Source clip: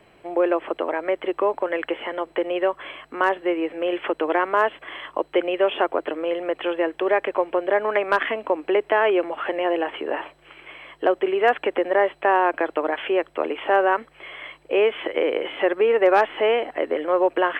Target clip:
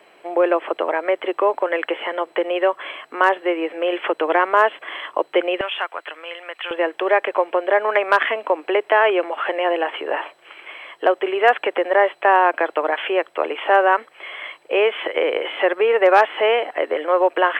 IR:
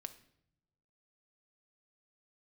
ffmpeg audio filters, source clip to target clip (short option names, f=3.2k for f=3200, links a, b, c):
-af "asetnsamples=n=441:p=0,asendcmd='5.61 highpass f 1400;6.71 highpass f 480',highpass=410,volume=5dB"